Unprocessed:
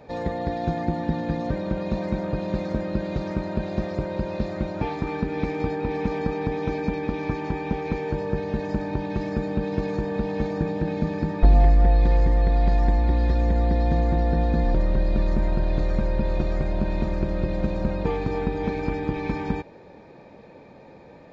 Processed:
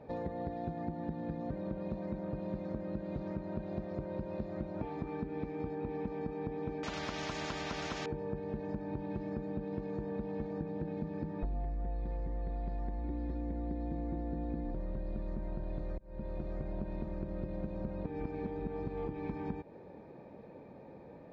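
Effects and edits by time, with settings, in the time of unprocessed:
6.83–8.06 s: spectrum-flattening compressor 10:1
13.03–14.71 s: small resonant body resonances 300/2200 Hz, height 9 dB
15.98–16.82 s: fade in
18.06–19.08 s: reverse
whole clip: high-pass 340 Hz 6 dB/octave; tilt EQ -4 dB/octave; compression, threshold -28 dBFS; trim -7 dB

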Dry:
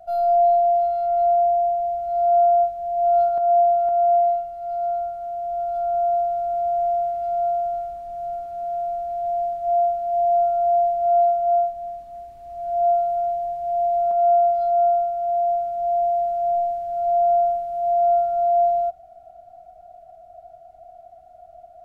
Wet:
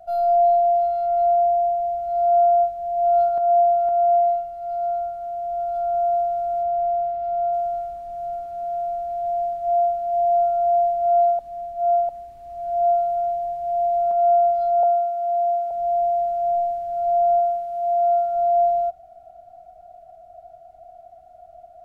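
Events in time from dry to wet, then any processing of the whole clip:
6.63–7.53 s: distance through air 140 m
11.39–12.09 s: reverse
14.83–15.71 s: steep high-pass 250 Hz
17.39–18.35 s: bass shelf 250 Hz -7 dB

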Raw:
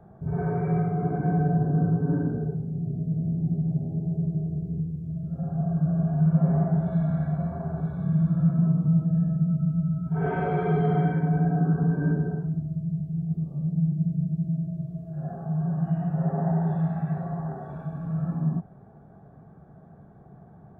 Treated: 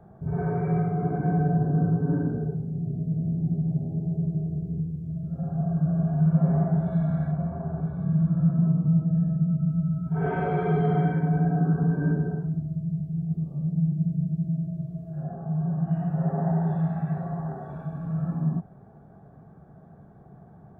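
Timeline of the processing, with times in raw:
7.31–9.69 s: low-pass 1.5 kHz 6 dB/octave
15.23–15.91 s: treble shelf 2.1 kHz -10.5 dB

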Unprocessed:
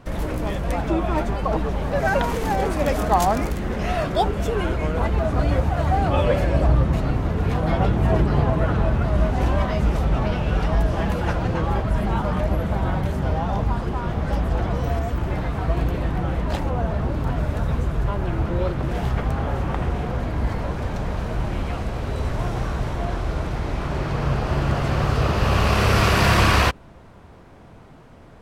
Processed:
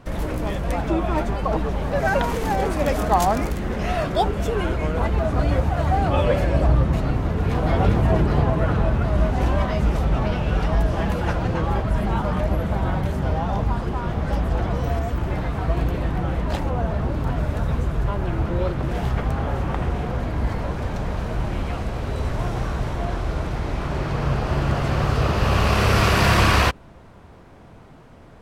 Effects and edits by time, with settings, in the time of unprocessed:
7.13–7.61 s: echo throw 400 ms, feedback 55%, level -2.5 dB

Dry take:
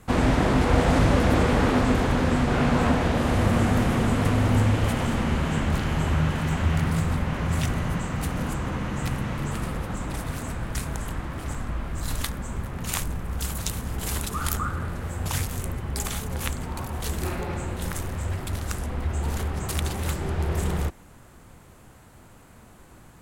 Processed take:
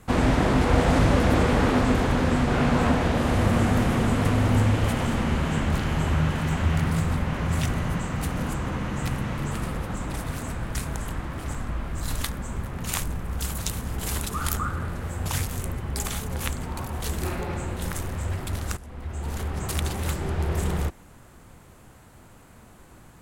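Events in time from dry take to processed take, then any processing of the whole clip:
18.77–19.64 s: fade in, from -15 dB

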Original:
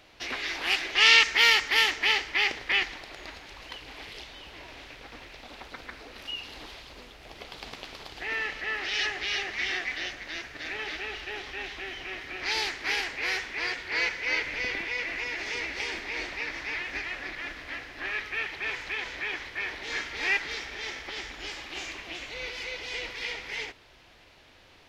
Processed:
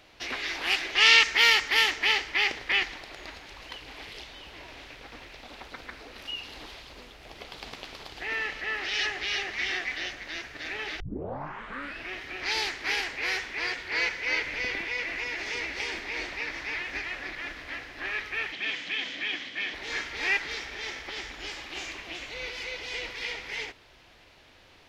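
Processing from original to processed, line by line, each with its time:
11.00 s: tape start 1.13 s
18.52–19.74 s: cabinet simulation 170–8100 Hz, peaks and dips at 180 Hz +8 dB, 270 Hz +9 dB, 410 Hz -7 dB, 920 Hz -9 dB, 1.4 kHz -5 dB, 3.2 kHz +9 dB

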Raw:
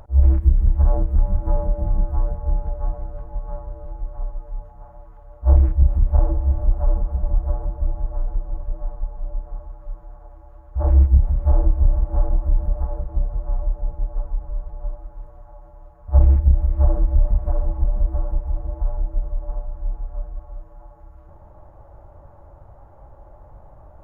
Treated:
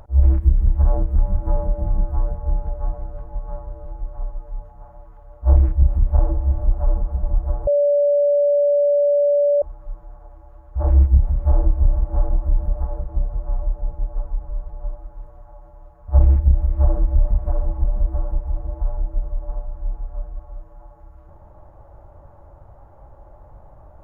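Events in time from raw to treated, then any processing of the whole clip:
7.67–9.62 s: bleep 577 Hz -13 dBFS

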